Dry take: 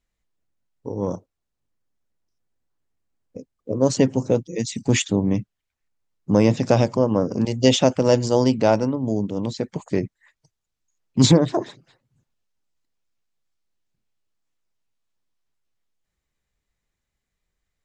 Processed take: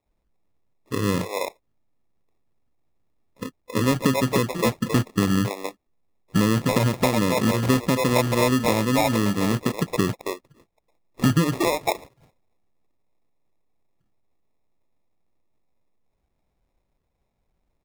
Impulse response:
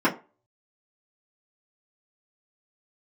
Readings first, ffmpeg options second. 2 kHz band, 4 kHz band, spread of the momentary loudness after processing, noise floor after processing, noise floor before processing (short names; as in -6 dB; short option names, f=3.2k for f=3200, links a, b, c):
+5.5 dB, -1.5 dB, 12 LU, -74 dBFS, -81 dBFS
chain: -filter_complex "[0:a]acrossover=split=520|1800[a][b][c];[a]adelay=60[d];[b]adelay=330[e];[d][e][c]amix=inputs=3:normalize=0,acrossover=split=1600|4700[f][g][h];[f]acompressor=threshold=-24dB:ratio=4[i];[g]acompressor=threshold=-50dB:ratio=4[j];[h]acompressor=threshold=-45dB:ratio=4[k];[i][j][k]amix=inputs=3:normalize=0,acrusher=samples=29:mix=1:aa=0.000001,volume=6.5dB"